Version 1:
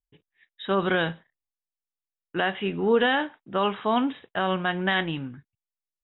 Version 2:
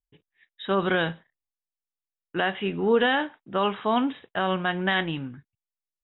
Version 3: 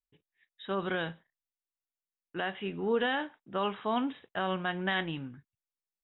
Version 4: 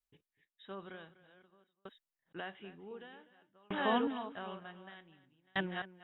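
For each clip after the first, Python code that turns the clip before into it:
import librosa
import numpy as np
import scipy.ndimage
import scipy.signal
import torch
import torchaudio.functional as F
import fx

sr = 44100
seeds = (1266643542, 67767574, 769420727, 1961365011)

y1 = x
y2 = fx.rider(y1, sr, range_db=10, speed_s=2.0)
y2 = F.gain(torch.from_numpy(y2), -7.0).numpy()
y3 = fx.reverse_delay(y2, sr, ms=582, wet_db=-5.0)
y3 = y3 + 10.0 ** (-12.0 / 20.0) * np.pad(y3, (int(248 * sr / 1000.0), 0))[:len(y3)]
y3 = fx.tremolo_decay(y3, sr, direction='decaying', hz=0.54, depth_db=39)
y3 = F.gain(torch.from_numpy(y3), 2.5).numpy()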